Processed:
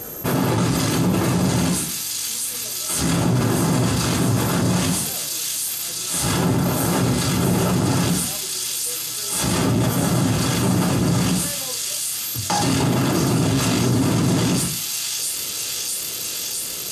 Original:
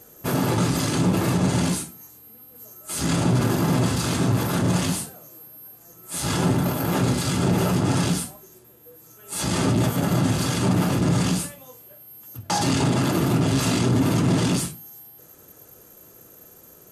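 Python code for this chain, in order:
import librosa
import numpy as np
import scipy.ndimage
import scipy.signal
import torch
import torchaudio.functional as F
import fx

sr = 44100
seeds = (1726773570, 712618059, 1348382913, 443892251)

y = fx.echo_wet_highpass(x, sr, ms=655, feedback_pct=80, hz=4200.0, wet_db=-3.5)
y = fx.env_flatten(y, sr, amount_pct=50)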